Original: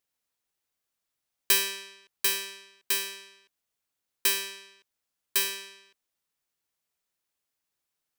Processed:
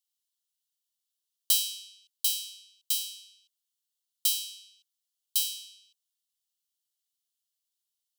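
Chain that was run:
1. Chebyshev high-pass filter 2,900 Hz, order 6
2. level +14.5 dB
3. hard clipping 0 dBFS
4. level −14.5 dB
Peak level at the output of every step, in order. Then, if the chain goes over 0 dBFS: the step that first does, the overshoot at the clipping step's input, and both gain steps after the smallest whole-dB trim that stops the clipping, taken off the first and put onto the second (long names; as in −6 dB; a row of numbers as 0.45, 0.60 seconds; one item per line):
−9.0, +5.5, 0.0, −14.5 dBFS
step 2, 5.5 dB
step 2 +8.5 dB, step 4 −8.5 dB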